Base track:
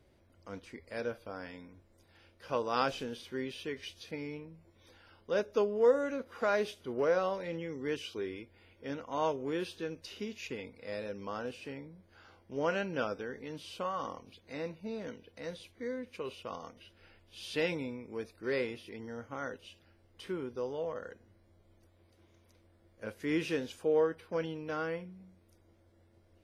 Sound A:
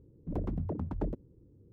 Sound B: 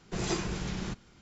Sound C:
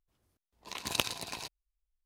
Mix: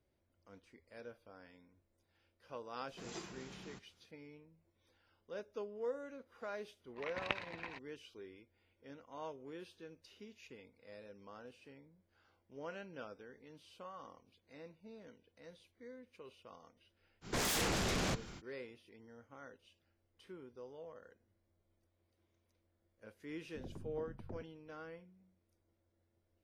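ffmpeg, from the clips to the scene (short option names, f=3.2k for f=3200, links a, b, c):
-filter_complex "[2:a]asplit=2[a][b];[0:a]volume=-14.5dB[c];[a]highpass=f=220:p=1[d];[3:a]lowpass=f=2k:t=q:w=3.5[e];[b]aeval=exprs='0.126*sin(PI/2*7.94*val(0)/0.126)':c=same[f];[1:a]aeval=exprs='val(0)*sin(2*PI*49*n/s)':c=same[g];[d]atrim=end=1.21,asetpts=PTS-STARTPTS,volume=-14.5dB,afade=t=in:d=0.004:c=hsin,afade=t=out:st=1.206:d=0.004:c=hsin,adelay=2850[h];[e]atrim=end=2.05,asetpts=PTS-STARTPTS,volume=-8dB,afade=t=in:d=0.004:c=hsin,afade=t=out:st=2.046:d=0.004:c=hsin,adelay=6310[i];[f]atrim=end=1.21,asetpts=PTS-STARTPTS,volume=-14dB,afade=t=in:d=0.05,afade=t=out:st=1.16:d=0.05,adelay=17210[j];[g]atrim=end=1.72,asetpts=PTS-STARTPTS,volume=-12.5dB,afade=t=in:d=0.004:c=hsin,afade=t=out:st=1.716:d=0.004:c=hsin,adelay=23280[k];[c][h][i][j][k]amix=inputs=5:normalize=0"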